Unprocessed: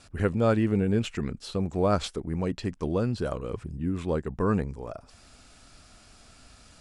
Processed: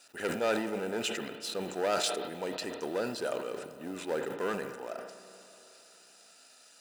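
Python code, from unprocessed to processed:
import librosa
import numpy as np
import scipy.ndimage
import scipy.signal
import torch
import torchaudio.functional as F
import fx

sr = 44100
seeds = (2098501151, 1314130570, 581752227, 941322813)

y = fx.law_mismatch(x, sr, coded='A')
y = 10.0 ** (-24.0 / 20.0) * np.tanh(y / 10.0 ** (-24.0 / 20.0))
y = scipy.signal.sosfilt(scipy.signal.butter(2, 440.0, 'highpass', fs=sr, output='sos'), y)
y = fx.high_shelf(y, sr, hz=3200.0, db=8.0)
y = fx.notch_comb(y, sr, f0_hz=1100.0)
y = fx.rev_spring(y, sr, rt60_s=3.4, pass_ms=(32, 53), chirp_ms=50, drr_db=10.5)
y = fx.sustainer(y, sr, db_per_s=60.0)
y = y * 10.0 ** (2.0 / 20.0)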